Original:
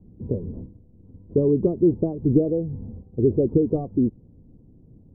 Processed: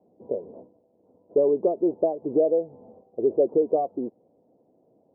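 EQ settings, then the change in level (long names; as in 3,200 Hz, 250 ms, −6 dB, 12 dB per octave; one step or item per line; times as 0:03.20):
high-pass filter 510 Hz 6 dB per octave
resonant band-pass 760 Hz, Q 0.7
parametric band 660 Hz +13.5 dB 1.1 octaves
0.0 dB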